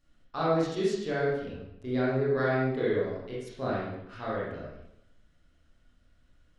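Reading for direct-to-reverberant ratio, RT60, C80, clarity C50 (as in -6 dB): -8.0 dB, 0.85 s, 2.5 dB, -1.5 dB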